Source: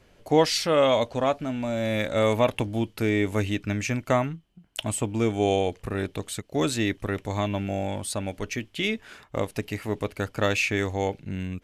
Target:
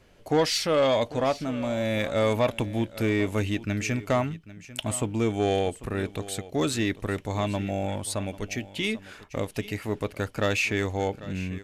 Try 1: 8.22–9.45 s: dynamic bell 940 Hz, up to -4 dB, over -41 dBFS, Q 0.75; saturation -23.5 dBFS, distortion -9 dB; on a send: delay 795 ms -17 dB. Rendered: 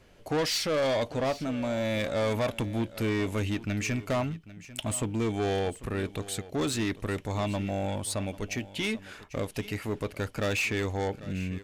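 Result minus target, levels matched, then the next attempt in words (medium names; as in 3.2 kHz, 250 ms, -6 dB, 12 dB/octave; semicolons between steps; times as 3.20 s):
saturation: distortion +9 dB
8.22–9.45 s: dynamic bell 940 Hz, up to -4 dB, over -41 dBFS, Q 0.75; saturation -14.5 dBFS, distortion -18 dB; on a send: delay 795 ms -17 dB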